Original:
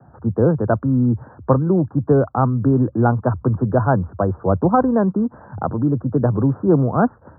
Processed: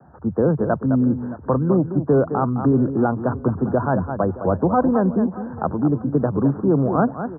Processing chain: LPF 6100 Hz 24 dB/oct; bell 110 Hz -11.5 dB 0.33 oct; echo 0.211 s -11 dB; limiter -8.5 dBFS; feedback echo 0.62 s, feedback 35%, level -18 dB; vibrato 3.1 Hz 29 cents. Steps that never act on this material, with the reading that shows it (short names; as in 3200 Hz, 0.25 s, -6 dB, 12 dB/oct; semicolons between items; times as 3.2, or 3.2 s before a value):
LPF 6100 Hz: input band ends at 1600 Hz